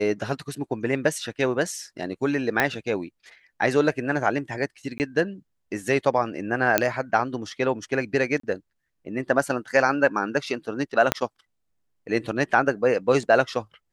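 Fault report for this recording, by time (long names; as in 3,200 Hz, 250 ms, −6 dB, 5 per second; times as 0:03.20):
0:02.60: click −6 dBFS
0:04.98–0:05.00: drop-out 19 ms
0:06.78: click −2 dBFS
0:08.40–0:08.43: drop-out 34 ms
0:11.12: click −3 dBFS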